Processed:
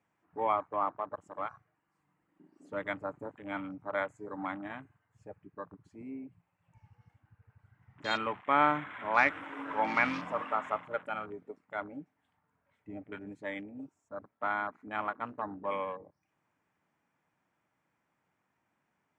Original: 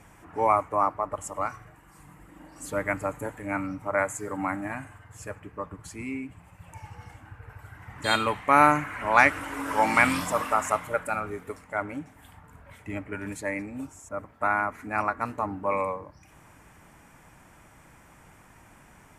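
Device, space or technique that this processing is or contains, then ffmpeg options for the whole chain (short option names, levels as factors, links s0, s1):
over-cleaned archive recording: -filter_complex "[0:a]asettb=1/sr,asplit=3[s0][s1][s2];[s0]atrim=end=9.024[s3];[s1]atrim=start=9.02:end=9.64,asetpts=PTS-STARTPTS,afade=t=in:d=0.004:c=qsin,afade=t=out:st=0.616:d=0.004:c=qsin,highshelf=f=7200:g=8.5[s4];[s2]atrim=start=9.636[s5];[s3][s4]acrossfade=d=0.004:c1=hsin:c2=qsin[s6];[s6][s5]acrossfade=d=0.004:c1=qsin:c2=hsin,highpass=150,lowpass=5000,afwtdn=0.0141,volume=0.422"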